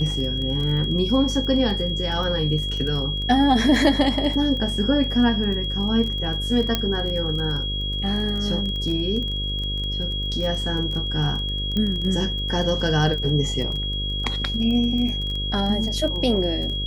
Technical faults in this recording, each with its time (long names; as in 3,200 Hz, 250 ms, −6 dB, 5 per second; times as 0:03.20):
mains buzz 50 Hz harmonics 11 −28 dBFS
surface crackle 20 per second −28 dBFS
whistle 3,300 Hz −27 dBFS
0:06.75: click −6 dBFS
0:11.77: click −14 dBFS